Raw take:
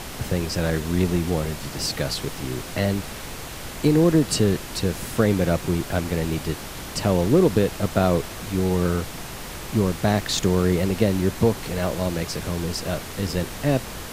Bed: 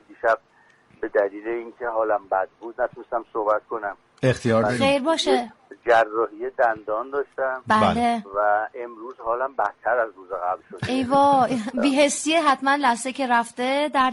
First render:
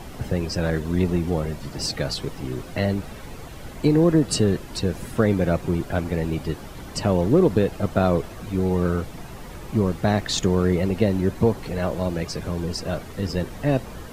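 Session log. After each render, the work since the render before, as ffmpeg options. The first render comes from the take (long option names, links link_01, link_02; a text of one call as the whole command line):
ffmpeg -i in.wav -af "afftdn=noise_reduction=11:noise_floor=-35" out.wav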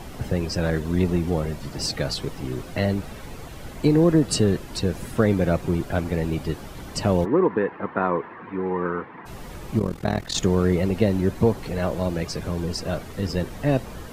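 ffmpeg -i in.wav -filter_complex "[0:a]asplit=3[link_01][link_02][link_03];[link_01]afade=type=out:start_time=7.24:duration=0.02[link_04];[link_02]highpass=270,equalizer=frequency=630:width_type=q:width=4:gain=-9,equalizer=frequency=1000:width_type=q:width=4:gain=10,equalizer=frequency=1800:width_type=q:width=4:gain=7,lowpass=frequency=2200:width=0.5412,lowpass=frequency=2200:width=1.3066,afade=type=in:start_time=7.24:duration=0.02,afade=type=out:start_time=9.25:duration=0.02[link_05];[link_03]afade=type=in:start_time=9.25:duration=0.02[link_06];[link_04][link_05][link_06]amix=inputs=3:normalize=0,asettb=1/sr,asplit=3[link_07][link_08][link_09];[link_07]atrim=end=9.794[link_10];[link_08]atrim=start=9.79:end=10.35,asetpts=PTS-STARTPTS,afade=type=in:duration=0.004:curve=qsin,afade=type=out:start_time=0.556:duration=0.004:curve=qsin,tremolo=f=41:d=0.889[link_11];[link_09]atrim=start=10.346[link_12];[link_10][link_11]acrossfade=duration=0.004:curve1=hsin:curve2=qsin[link_13];[link_13][link_12]acrossfade=duration=0.004:curve1=qsin:curve2=hsin" out.wav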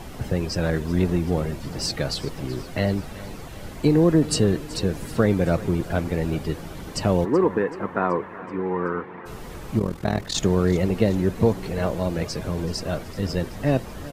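ffmpeg -i in.wav -af "aecho=1:1:379|758|1137|1516|1895:0.126|0.0718|0.0409|0.0233|0.0133" out.wav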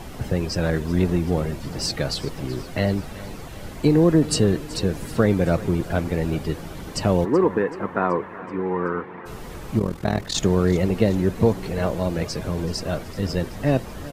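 ffmpeg -i in.wav -af "volume=1dB" out.wav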